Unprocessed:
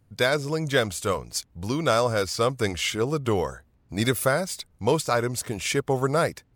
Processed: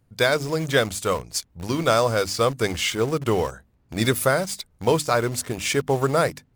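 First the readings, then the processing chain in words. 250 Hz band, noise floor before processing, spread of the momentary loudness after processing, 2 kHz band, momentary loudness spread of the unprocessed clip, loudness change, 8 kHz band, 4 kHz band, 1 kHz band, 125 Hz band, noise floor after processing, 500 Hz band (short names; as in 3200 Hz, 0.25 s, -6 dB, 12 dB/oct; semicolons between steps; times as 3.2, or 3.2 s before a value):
+2.0 dB, -63 dBFS, 7 LU, +2.5 dB, 6 LU, +2.5 dB, +2.5 dB, +2.5 dB, +2.5 dB, +1.5 dB, -63 dBFS, +2.5 dB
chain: notches 50/100/150/200/250/300 Hz; in parallel at -9.5 dB: bit-crush 5-bit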